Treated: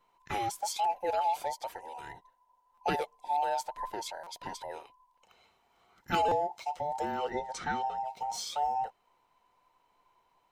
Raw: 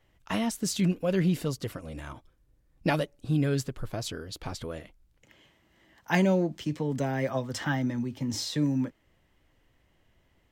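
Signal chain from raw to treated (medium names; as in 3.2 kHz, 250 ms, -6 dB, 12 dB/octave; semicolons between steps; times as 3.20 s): every band turned upside down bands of 1 kHz; 7.17–8.05 s: low-pass 8.4 kHz 12 dB/octave; buffer glitch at 2.74/4.23/6.28 s, samples 256, times 5; trim -4.5 dB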